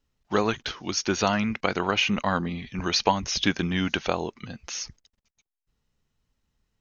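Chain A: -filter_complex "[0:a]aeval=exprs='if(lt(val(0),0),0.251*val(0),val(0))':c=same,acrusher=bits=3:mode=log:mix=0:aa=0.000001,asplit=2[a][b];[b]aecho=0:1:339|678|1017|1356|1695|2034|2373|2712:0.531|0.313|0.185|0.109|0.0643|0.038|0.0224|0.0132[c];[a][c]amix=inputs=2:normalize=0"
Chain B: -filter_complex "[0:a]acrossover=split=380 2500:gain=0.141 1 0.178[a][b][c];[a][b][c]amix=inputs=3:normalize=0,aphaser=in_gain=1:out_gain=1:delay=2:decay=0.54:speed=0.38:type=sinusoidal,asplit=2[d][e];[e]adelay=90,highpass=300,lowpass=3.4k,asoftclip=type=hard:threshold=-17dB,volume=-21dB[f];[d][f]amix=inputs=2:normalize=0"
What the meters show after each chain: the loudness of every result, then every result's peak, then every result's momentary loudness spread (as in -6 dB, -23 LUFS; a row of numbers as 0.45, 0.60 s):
-29.0, -30.0 LUFS; -6.5, -7.5 dBFS; 14, 15 LU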